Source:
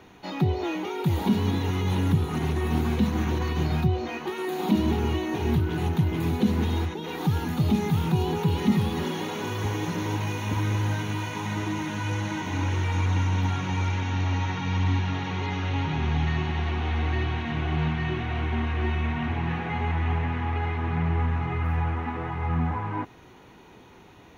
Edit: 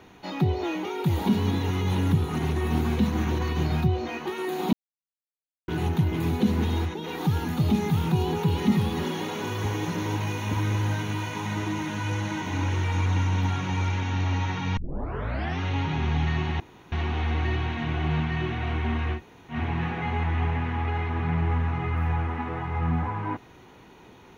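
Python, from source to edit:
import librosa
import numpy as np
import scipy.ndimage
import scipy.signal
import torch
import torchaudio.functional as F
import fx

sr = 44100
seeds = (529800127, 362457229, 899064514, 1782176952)

y = fx.edit(x, sr, fx.silence(start_s=4.73, length_s=0.95),
    fx.tape_start(start_s=14.77, length_s=0.84),
    fx.insert_room_tone(at_s=16.6, length_s=0.32),
    fx.room_tone_fill(start_s=18.84, length_s=0.37, crossfade_s=0.1), tone=tone)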